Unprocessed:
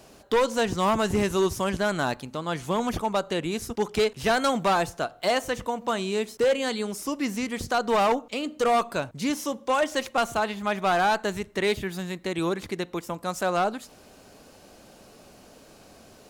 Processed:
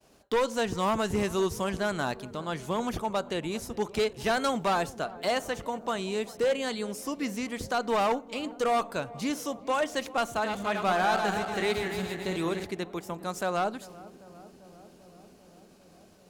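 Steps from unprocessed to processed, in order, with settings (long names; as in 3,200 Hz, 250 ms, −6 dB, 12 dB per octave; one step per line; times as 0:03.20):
0:10.31–0:12.65: feedback delay that plays each chunk backwards 143 ms, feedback 68%, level −5 dB
downward expander −46 dBFS
feedback echo with a low-pass in the loop 394 ms, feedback 83%, low-pass 1,200 Hz, level −19 dB
level −4 dB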